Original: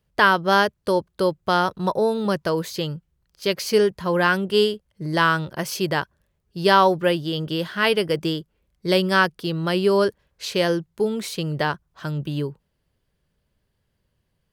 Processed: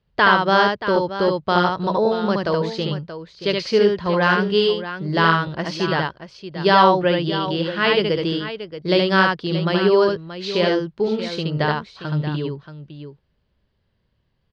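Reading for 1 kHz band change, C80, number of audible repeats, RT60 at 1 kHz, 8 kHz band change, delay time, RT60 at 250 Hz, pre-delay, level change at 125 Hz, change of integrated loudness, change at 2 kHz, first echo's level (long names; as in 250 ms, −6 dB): +3.0 dB, no reverb audible, 2, no reverb audible, can't be measured, 73 ms, no reverb audible, no reverb audible, +3.5 dB, +2.5 dB, +2.0 dB, −3.0 dB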